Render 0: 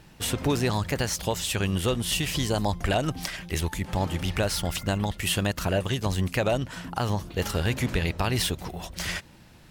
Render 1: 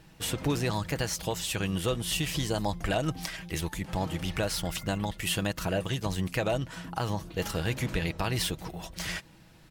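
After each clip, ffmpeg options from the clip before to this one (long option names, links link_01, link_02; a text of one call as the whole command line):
ffmpeg -i in.wav -af "aecho=1:1:6.2:0.36,volume=-4dB" out.wav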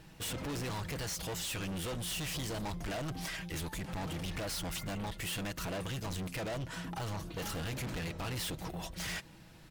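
ffmpeg -i in.wav -af "volume=36dB,asoftclip=hard,volume=-36dB" out.wav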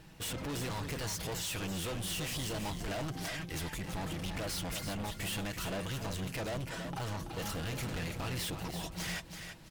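ffmpeg -i in.wav -af "aecho=1:1:332|664|996:0.422|0.097|0.0223" out.wav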